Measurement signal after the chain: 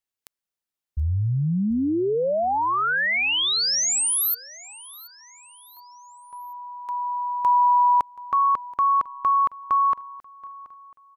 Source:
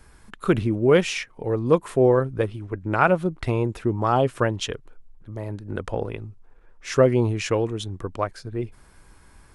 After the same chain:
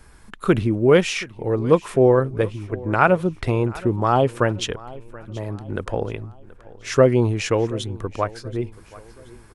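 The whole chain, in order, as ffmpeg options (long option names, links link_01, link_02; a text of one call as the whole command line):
ffmpeg -i in.wav -af "aecho=1:1:728|1456|2184:0.0944|0.0425|0.0191,volume=2.5dB" out.wav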